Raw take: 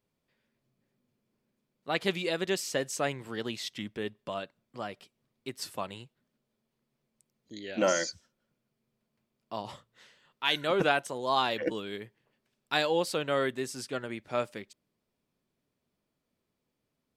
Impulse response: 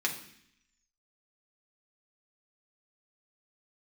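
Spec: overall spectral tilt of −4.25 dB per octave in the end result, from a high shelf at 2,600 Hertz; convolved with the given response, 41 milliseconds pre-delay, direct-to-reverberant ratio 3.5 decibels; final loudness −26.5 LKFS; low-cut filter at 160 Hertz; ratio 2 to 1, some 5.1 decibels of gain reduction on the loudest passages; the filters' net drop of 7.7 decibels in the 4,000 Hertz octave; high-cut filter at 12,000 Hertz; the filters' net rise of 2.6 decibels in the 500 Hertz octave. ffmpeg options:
-filter_complex "[0:a]highpass=160,lowpass=12000,equalizer=frequency=500:width_type=o:gain=3.5,highshelf=frequency=2600:gain=-5.5,equalizer=frequency=4000:width_type=o:gain=-5.5,acompressor=threshold=-29dB:ratio=2,asplit=2[link_01][link_02];[1:a]atrim=start_sample=2205,adelay=41[link_03];[link_02][link_03]afir=irnorm=-1:irlink=0,volume=-10.5dB[link_04];[link_01][link_04]amix=inputs=2:normalize=0,volume=7.5dB"

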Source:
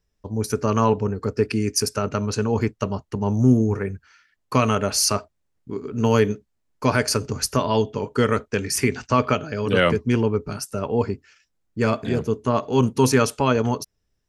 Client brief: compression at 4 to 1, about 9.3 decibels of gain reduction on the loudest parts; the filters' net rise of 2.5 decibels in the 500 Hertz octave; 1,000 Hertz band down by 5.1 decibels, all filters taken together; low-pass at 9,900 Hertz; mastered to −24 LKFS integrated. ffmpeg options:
ffmpeg -i in.wav -af "lowpass=9900,equalizer=frequency=500:width_type=o:gain=4.5,equalizer=frequency=1000:width_type=o:gain=-7.5,acompressor=threshold=-22dB:ratio=4,volume=3.5dB" out.wav

